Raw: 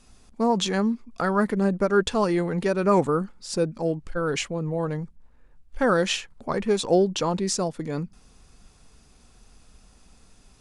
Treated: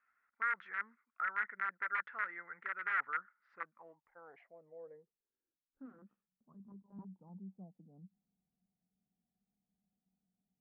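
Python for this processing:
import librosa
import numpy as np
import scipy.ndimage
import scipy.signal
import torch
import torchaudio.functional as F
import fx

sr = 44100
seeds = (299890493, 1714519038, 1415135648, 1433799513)

y = (np.mod(10.0 ** (14.5 / 20.0) * x + 1.0, 2.0) - 1.0) / 10.0 ** (14.5 / 20.0)
y = fx.filter_sweep_lowpass(y, sr, from_hz=1400.0, to_hz=190.0, start_s=3.42, end_s=6.28, q=7.4)
y = fx.lpc_monotone(y, sr, seeds[0], pitch_hz=200.0, order=10, at=(6.54, 6.99))
y = fx.filter_sweep_bandpass(y, sr, from_hz=2000.0, to_hz=740.0, start_s=4.77, end_s=7.7, q=7.5)
y = y * 10.0 ** (-6.5 / 20.0)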